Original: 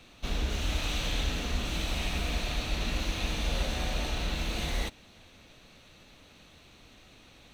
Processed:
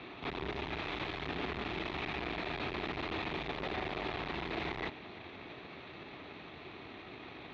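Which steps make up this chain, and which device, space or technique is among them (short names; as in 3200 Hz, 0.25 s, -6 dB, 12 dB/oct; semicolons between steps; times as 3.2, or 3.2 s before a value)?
guitar amplifier (tube stage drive 44 dB, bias 0.55; tone controls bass -6 dB, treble -8 dB; speaker cabinet 100–3400 Hz, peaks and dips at 220 Hz -4 dB, 380 Hz +6 dB, 530 Hz -8 dB, 1500 Hz -5 dB, 2900 Hz -7 dB); gain +14.5 dB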